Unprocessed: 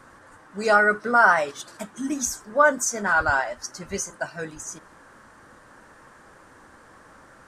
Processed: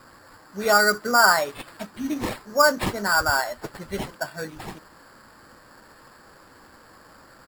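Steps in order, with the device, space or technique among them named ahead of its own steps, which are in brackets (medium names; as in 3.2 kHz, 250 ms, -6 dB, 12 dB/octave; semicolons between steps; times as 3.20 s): crushed at another speed (playback speed 0.8×; sample-and-hold 9×; playback speed 1.25×)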